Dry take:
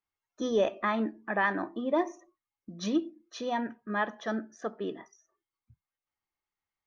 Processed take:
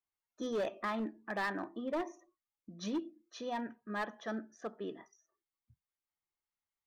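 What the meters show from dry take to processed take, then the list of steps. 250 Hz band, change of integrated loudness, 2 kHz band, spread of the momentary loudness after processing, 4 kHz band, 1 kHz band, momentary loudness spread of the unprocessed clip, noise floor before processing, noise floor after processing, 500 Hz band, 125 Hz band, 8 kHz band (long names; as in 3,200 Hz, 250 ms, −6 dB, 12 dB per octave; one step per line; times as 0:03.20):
−7.5 dB, −7.5 dB, −8.0 dB, 9 LU, −6.0 dB, −7.5 dB, 10 LU, below −85 dBFS, below −85 dBFS, −8.0 dB, −7.0 dB, can't be measured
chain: gain into a clipping stage and back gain 24 dB
level −6.5 dB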